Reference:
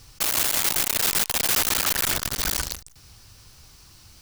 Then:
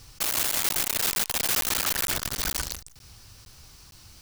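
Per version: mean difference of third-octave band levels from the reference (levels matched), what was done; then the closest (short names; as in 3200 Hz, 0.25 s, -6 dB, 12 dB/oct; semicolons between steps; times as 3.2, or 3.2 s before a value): 1.5 dB: limiter -18.5 dBFS, peak gain reduction 3.5 dB; crackling interface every 0.46 s, samples 512, zero, from 0.69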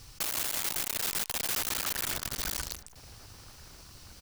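4.0 dB: compressor 2:1, threshold -34 dBFS, peak gain reduction 8.5 dB; outdoor echo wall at 280 m, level -16 dB; gain -1.5 dB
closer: first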